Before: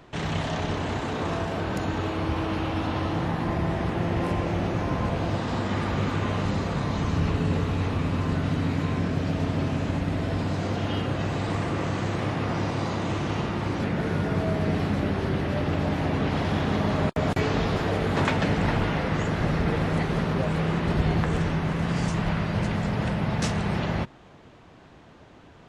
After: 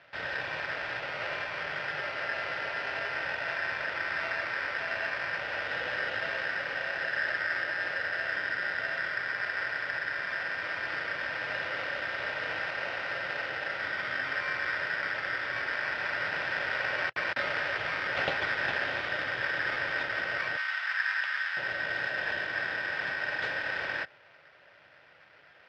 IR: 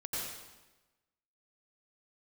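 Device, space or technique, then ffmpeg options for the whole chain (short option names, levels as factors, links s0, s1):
ring modulator pedal into a guitar cabinet: -filter_complex "[0:a]aeval=exprs='val(0)*sgn(sin(2*PI*1700*n/s))':c=same,highpass=78,equalizer=f=120:t=q:w=4:g=3,equalizer=f=220:t=q:w=4:g=-9,equalizer=f=580:t=q:w=4:g=10,equalizer=f=1100:t=q:w=4:g=-6,equalizer=f=2100:t=q:w=4:g=-3,lowpass=f=3600:w=0.5412,lowpass=f=3600:w=1.3066,asettb=1/sr,asplit=3[s0][s1][s2];[s0]atrim=end=20.574[s3];[s1]atrim=start=20.57:end=21.57,asetpts=PTS-STARTPTS,afade=t=in:d=0.004:c=qsin,afade=t=out:st=0.996:d=0.004:c=qsin,highpass=f=980:w=0.5412,highpass=f=980:w=1.3066[s4];[s2]atrim=start=21.566[s5];[s3][s4]acrossfade=d=0.004:c1=hsin:c2=qsin[s6];[s6][s5]acrossfade=d=0.004:c1=qsin:c2=hsin,volume=0.562"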